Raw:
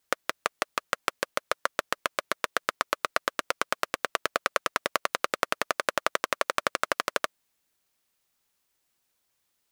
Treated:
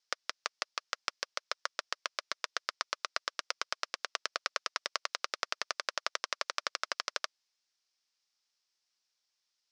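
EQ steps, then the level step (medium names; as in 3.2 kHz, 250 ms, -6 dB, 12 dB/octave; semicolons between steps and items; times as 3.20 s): high-pass 950 Hz 6 dB/octave; resonant low-pass 5.3 kHz, resonance Q 3.7; -8.0 dB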